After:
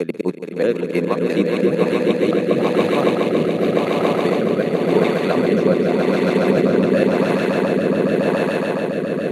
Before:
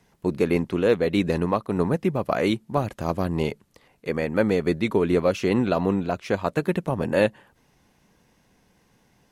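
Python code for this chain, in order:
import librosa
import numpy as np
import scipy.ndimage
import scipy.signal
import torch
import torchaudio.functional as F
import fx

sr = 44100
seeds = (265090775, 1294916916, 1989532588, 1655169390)

p1 = fx.block_reorder(x, sr, ms=105.0, group=5)
p2 = fx.transient(p1, sr, attack_db=3, sustain_db=-7)
p3 = p2 + fx.echo_swell(p2, sr, ms=140, loudest=8, wet_db=-5.5, dry=0)
p4 = fx.rotary_switch(p3, sr, hz=6.0, then_hz=0.9, switch_at_s=1.09)
p5 = scipy.signal.sosfilt(scipy.signal.butter(4, 150.0, 'highpass', fs=sr, output='sos'), p4)
y = p5 * librosa.db_to_amplitude(2.0)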